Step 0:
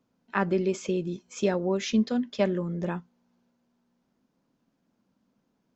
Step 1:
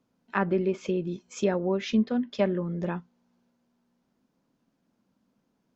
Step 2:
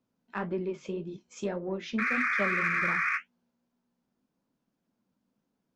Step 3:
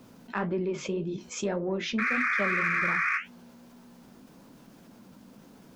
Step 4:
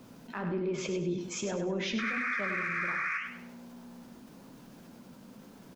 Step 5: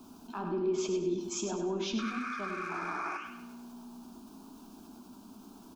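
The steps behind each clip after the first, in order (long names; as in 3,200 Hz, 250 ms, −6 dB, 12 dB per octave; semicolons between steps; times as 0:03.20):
treble cut that deepens with the level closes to 2,600 Hz, closed at −23 dBFS
sound drawn into the spectrogram noise, 0:01.98–0:03.18, 1,100–2,500 Hz −21 dBFS; in parallel at −6 dB: soft clipping −20.5 dBFS, distortion −11 dB; on the sum: flanger 1.8 Hz, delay 8.1 ms, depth 9.8 ms, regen −52%; level −6 dB
envelope flattener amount 50%
brickwall limiter −26 dBFS, peak gain reduction 9.5 dB; on a send: repeating echo 100 ms, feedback 35%, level −7 dB
sound drawn into the spectrogram noise, 0:02.69–0:03.17, 280–1,500 Hz −42 dBFS; phaser with its sweep stopped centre 520 Hz, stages 6; on a send at −11 dB: convolution reverb RT60 0.85 s, pre-delay 77 ms; on the sum: level +2.5 dB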